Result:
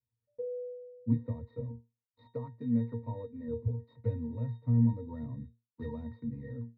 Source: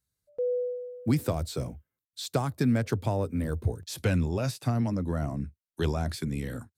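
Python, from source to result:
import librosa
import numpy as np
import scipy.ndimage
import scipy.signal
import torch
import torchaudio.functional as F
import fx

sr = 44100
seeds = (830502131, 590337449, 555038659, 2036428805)

p1 = scipy.signal.medfilt(x, 15)
p2 = fx.highpass(p1, sr, hz=280.0, slope=6, at=(2.32, 3.48))
p3 = fx.high_shelf(p2, sr, hz=4300.0, db=12.0, at=(4.85, 6.05))
p4 = fx.rider(p3, sr, range_db=10, speed_s=0.5)
p5 = p3 + (p4 * 10.0 ** (-3.0 / 20.0))
p6 = fx.air_absorb(p5, sr, metres=140.0)
y = fx.octave_resonator(p6, sr, note='A#', decay_s=0.24)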